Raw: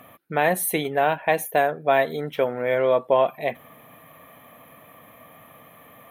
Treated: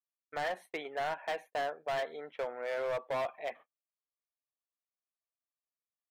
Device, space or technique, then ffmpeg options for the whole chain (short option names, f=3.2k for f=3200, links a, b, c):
walkie-talkie: -af "highpass=560,lowpass=2.4k,asoftclip=type=hard:threshold=-21.5dB,agate=range=-50dB:threshold=-41dB:ratio=16:detection=peak,volume=-8.5dB"